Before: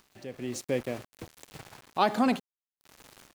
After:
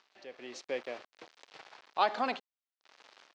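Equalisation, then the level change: HPF 550 Hz 12 dB/oct; LPF 5200 Hz 24 dB/oct; -2.0 dB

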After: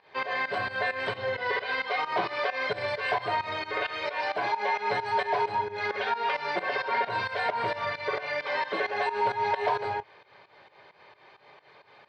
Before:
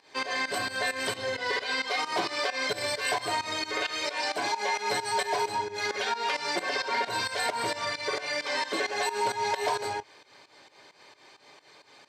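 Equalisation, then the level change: air absorption 360 m; bell 280 Hz -12 dB 0.51 oct; high shelf 11000 Hz -6.5 dB; +4.0 dB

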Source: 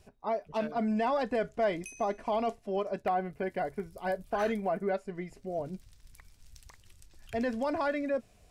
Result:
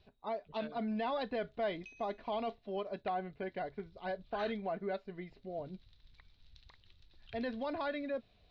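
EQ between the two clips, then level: synth low-pass 3900 Hz, resonance Q 6.1; air absorption 160 m; -6.5 dB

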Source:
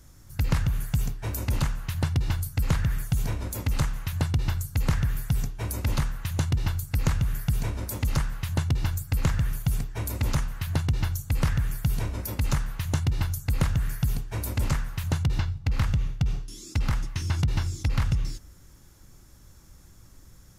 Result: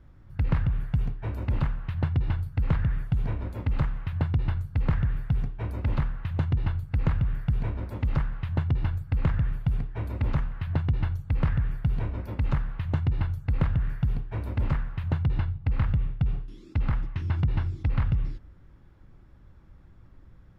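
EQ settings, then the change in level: air absorption 470 m; 0.0 dB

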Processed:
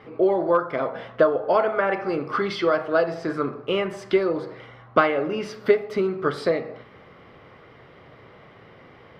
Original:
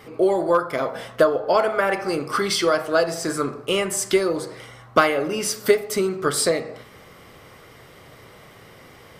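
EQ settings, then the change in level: air absorption 320 m; low shelf 62 Hz -9 dB; 0.0 dB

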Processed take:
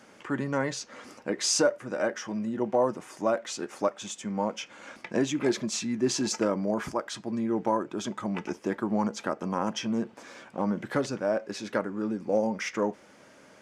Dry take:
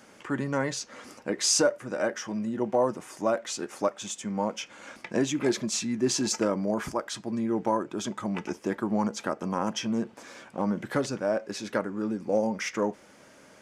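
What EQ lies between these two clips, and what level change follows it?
low shelf 64 Hz -6 dB; high shelf 7900 Hz -7 dB; 0.0 dB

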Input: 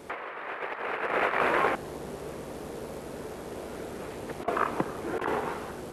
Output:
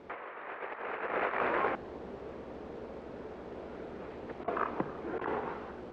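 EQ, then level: air absorption 160 m; high shelf 5200 Hz -9.5 dB; notches 50/100/150 Hz; -4.5 dB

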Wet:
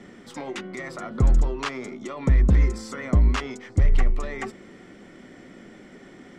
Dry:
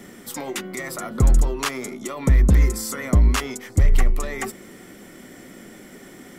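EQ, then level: air absorption 120 m; -2.5 dB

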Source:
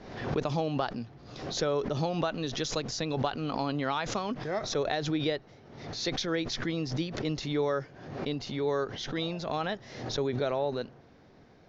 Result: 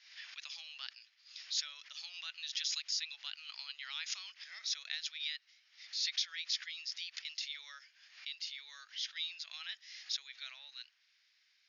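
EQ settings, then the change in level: ladder high-pass 2400 Hz, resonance 30%; rippled Chebyshev low-pass 6900 Hz, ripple 6 dB; +8.5 dB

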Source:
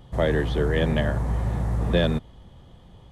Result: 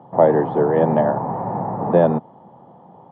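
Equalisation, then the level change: HPF 160 Hz 24 dB/oct; synth low-pass 860 Hz, resonance Q 3.8; +5.5 dB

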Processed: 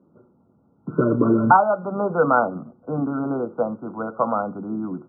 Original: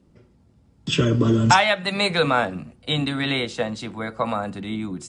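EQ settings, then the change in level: HPF 200 Hz 12 dB/oct; brick-wall FIR low-pass 1500 Hz; +3.0 dB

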